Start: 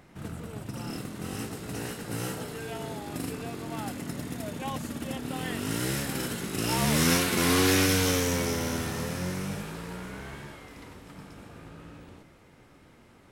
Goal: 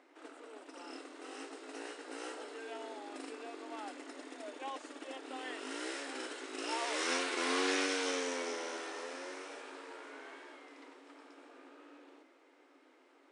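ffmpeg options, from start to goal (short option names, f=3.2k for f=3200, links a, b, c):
-filter_complex "[0:a]highshelf=f=7.2k:g=-11.5,acrossover=split=330|3000[a][b][c];[a]acompressor=threshold=-45dB:ratio=3[d];[d][b][c]amix=inputs=3:normalize=0,afftfilt=real='re*between(b*sr/4096,250,9900)':imag='im*between(b*sr/4096,250,9900)':win_size=4096:overlap=0.75,volume=-6dB"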